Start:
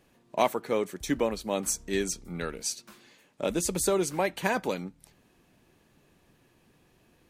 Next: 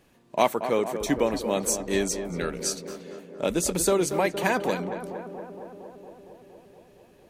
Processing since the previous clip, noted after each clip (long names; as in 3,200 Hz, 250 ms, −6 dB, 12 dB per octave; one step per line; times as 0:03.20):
tape delay 231 ms, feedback 84%, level −8 dB, low-pass 1,500 Hz
level +3 dB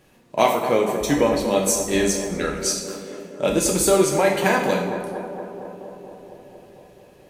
coupled-rooms reverb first 0.66 s, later 1.9 s, DRR 0.5 dB
level +3 dB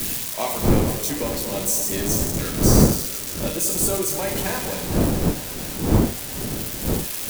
spike at every zero crossing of −7.5 dBFS
wind on the microphone 280 Hz −14 dBFS
level −9.5 dB